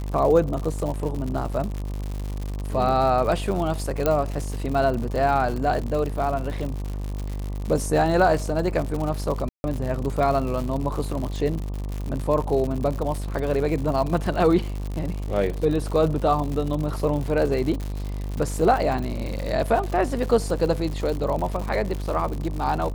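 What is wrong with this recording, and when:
buzz 50 Hz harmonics 24 -29 dBFS
crackle 120 per s -28 dBFS
4.06 s: pop -7 dBFS
9.49–9.64 s: dropout 150 ms

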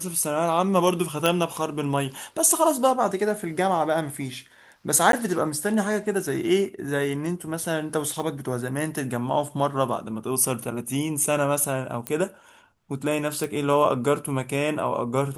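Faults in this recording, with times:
1.26 s: pop -7 dBFS
5.12–5.13 s: dropout 12 ms
8.20 s: dropout 2.5 ms
12.07 s: pop -11 dBFS
13.44 s: pop

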